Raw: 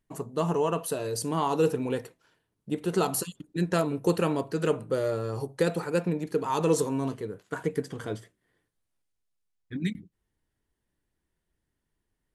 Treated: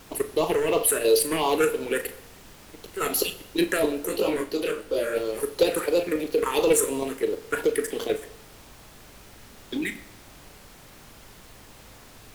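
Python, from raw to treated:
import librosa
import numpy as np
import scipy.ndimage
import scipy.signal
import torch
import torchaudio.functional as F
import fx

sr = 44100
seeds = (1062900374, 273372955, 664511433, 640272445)

y = scipy.signal.sosfilt(scipy.signal.butter(4, 350.0, 'highpass', fs=sr, output='sos'), x)
y = fx.high_shelf(y, sr, hz=6600.0, db=8.5)
y = fx.level_steps(y, sr, step_db=11)
y = fx.auto_swell(y, sr, attack_ms=350.0, at=(1.69, 3.0), fade=0.02)
y = fx.leveller(y, sr, passes=3)
y = fx.phaser_stages(y, sr, stages=4, low_hz=730.0, high_hz=1700.0, hz=2.9, feedback_pct=25)
y = fx.dmg_noise_colour(y, sr, seeds[0], colour='pink', level_db=-54.0)
y = fx.vibrato(y, sr, rate_hz=4.1, depth_cents=29.0)
y = fx.doubler(y, sr, ms=38.0, db=-12.0)
y = fx.rev_plate(y, sr, seeds[1], rt60_s=0.84, hf_ratio=0.9, predelay_ms=0, drr_db=11.5)
y = fx.detune_double(y, sr, cents=fx.line((4.06, 41.0), (5.15, 52.0)), at=(4.06, 5.15), fade=0.02)
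y = y * 10.0 ** (5.5 / 20.0)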